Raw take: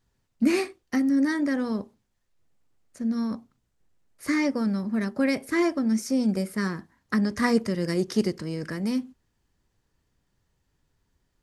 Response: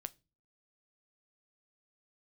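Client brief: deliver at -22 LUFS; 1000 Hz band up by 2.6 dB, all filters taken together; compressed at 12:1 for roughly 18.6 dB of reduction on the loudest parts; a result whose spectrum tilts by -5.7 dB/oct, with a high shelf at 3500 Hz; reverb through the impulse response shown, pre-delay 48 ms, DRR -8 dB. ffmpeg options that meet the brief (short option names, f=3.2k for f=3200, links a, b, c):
-filter_complex "[0:a]equalizer=f=1k:t=o:g=3.5,highshelf=f=3.5k:g=-3,acompressor=threshold=-36dB:ratio=12,asplit=2[a][b];[1:a]atrim=start_sample=2205,adelay=48[c];[b][c]afir=irnorm=-1:irlink=0,volume=11.5dB[d];[a][d]amix=inputs=2:normalize=0,volume=10dB"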